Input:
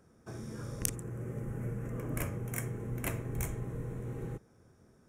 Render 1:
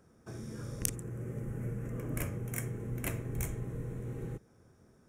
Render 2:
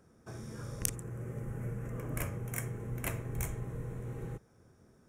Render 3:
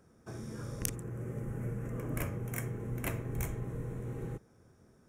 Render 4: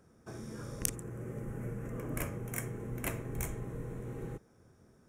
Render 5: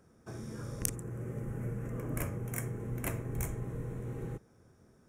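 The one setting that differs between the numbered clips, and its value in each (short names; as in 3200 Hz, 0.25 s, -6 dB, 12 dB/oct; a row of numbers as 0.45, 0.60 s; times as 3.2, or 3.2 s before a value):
dynamic EQ, frequency: 940, 280, 8600, 100, 3400 Hz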